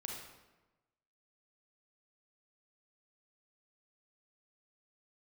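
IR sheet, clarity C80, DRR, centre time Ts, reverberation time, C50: 4.5 dB, -0.5 dB, 58 ms, 1.1 s, 1.0 dB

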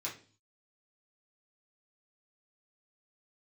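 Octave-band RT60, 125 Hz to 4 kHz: 0.70 s, 0.55 s, 0.45 s, 0.35 s, 0.35 s, 0.45 s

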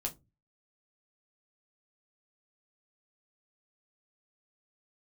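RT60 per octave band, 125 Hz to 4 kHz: 0.55 s, 0.40 s, 0.25 s, 0.20 s, 0.15 s, 0.15 s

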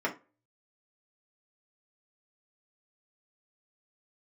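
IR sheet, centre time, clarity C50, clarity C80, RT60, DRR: 12 ms, 14.0 dB, 21.5 dB, 0.30 s, -2.5 dB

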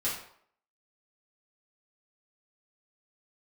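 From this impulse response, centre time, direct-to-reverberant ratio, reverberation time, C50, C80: 39 ms, -9.0 dB, 0.65 s, 4.5 dB, 8.0 dB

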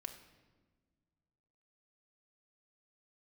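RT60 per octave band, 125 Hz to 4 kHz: 2.4 s, 2.2 s, 1.6 s, 1.2 s, 1.1 s, 0.95 s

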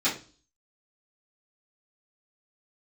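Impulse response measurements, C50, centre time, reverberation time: 9.5 dB, 24 ms, 0.35 s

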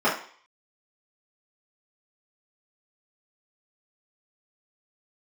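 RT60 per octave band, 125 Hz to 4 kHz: 0.35 s, 0.40 s, 0.45 s, 0.55 s, 0.55 s, 0.55 s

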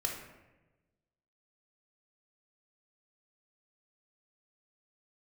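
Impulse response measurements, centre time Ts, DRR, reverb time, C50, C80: 42 ms, 0.0 dB, 1.1 s, 3.5 dB, 7.0 dB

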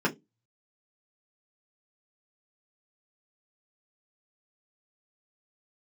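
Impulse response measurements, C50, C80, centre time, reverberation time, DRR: 18.5 dB, 28.0 dB, 10 ms, 0.20 s, -3.5 dB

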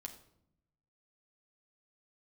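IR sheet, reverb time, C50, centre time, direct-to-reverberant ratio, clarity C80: 0.75 s, 11.0 dB, 12 ms, 3.5 dB, 13.5 dB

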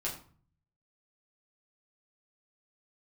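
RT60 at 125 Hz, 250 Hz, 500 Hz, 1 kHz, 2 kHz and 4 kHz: 0.95 s, 0.65 s, 0.45 s, 0.45 s, 0.35 s, 0.30 s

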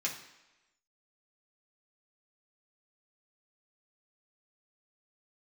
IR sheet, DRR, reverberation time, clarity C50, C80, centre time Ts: -3.5 dB, 1.0 s, 8.5 dB, 11.0 dB, 23 ms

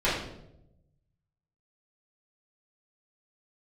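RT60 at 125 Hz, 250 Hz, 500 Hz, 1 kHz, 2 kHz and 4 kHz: 1.6 s, 1.1 s, 1.0 s, 0.70 s, 0.60 s, 0.55 s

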